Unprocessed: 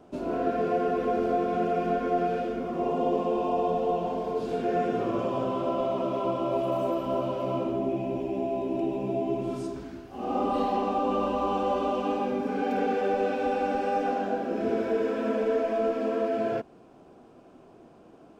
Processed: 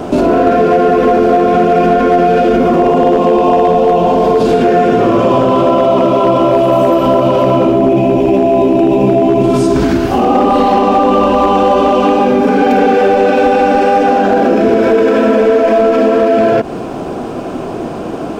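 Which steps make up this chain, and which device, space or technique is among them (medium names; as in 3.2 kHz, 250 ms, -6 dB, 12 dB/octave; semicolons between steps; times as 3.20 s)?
loud club master (compression 2.5:1, threshold -31 dBFS, peak gain reduction 7 dB; hard clipper -25.5 dBFS, distortion -24 dB; loudness maximiser +34 dB); trim -2 dB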